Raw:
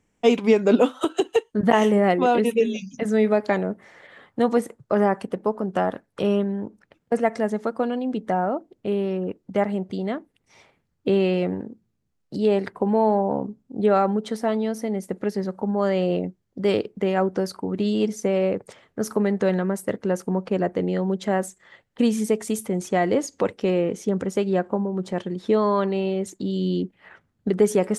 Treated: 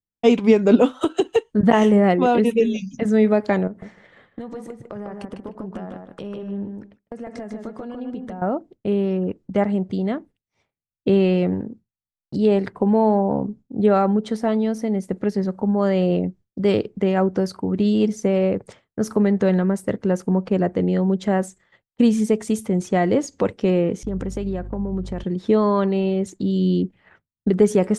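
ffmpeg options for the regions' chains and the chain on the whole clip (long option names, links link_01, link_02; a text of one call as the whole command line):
ffmpeg -i in.wav -filter_complex "[0:a]asettb=1/sr,asplit=3[link_01][link_02][link_03];[link_01]atrim=end=3.674[link_04];[link_02]atrim=start=3.67:end=8.42,asetpts=PTS-STARTPTS,afade=type=in:duration=0.004:curve=qsin,afade=type=out:start_time=4.746:duration=0.004:curve=qsin,acompressor=threshold=-32dB:ratio=12:attack=3.2:release=140:knee=1:detection=peak,asplit=2[link_05][link_06];[link_06]adelay=151,lowpass=frequency=3600:poles=1,volume=-4dB,asplit=2[link_07][link_08];[link_08]adelay=151,lowpass=frequency=3600:poles=1,volume=0.22,asplit=2[link_09][link_10];[link_10]adelay=151,lowpass=frequency=3600:poles=1,volume=0.22[link_11];[link_05][link_07][link_09][link_11]amix=inputs=4:normalize=0,atrim=end_sample=209475[link_12];[link_03]atrim=start=8.416[link_13];[link_04][link_12]acrossfade=duration=0.004:curve1=hsin:curve2=qsin[link_14];[link_14][link_13]acrossfade=duration=0.004:curve1=qsin:curve2=hsin,asettb=1/sr,asplit=3[link_15][link_16][link_17];[link_15]atrim=end=24.034[link_18];[link_16]atrim=start=24.03:end=25.24,asetpts=PTS-STARTPTS,afade=type=in:duration=0.004:curve=qsin,afade=type=out:start_time=1.206:duration=0.004:curve=qsin,agate=range=-33dB:threshold=-37dB:ratio=3:release=100:detection=peak,acompressor=threshold=-26dB:ratio=6:attack=3.2:release=140:knee=1:detection=peak,aeval=exprs='val(0)+0.00891*(sin(2*PI*50*n/s)+sin(2*PI*2*50*n/s)/2+sin(2*PI*3*50*n/s)/3+sin(2*PI*4*50*n/s)/4+sin(2*PI*5*50*n/s)/5)':channel_layout=same[link_19];[link_17]atrim=start=25.236[link_20];[link_18][link_19]acrossfade=duration=0.004:curve1=hsin:curve2=qsin[link_21];[link_21][link_20]acrossfade=duration=0.004:curve1=qsin:curve2=hsin,agate=range=-33dB:threshold=-41dB:ratio=3:detection=peak,lowpass=9300,lowshelf=frequency=200:gain=10.5" out.wav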